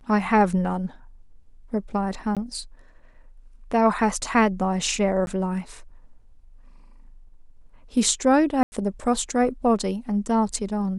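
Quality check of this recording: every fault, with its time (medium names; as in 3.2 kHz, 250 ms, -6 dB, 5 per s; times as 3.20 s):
2.35–2.37 s: dropout 17 ms
5.26–5.27 s: dropout 11 ms
8.63–8.72 s: dropout 90 ms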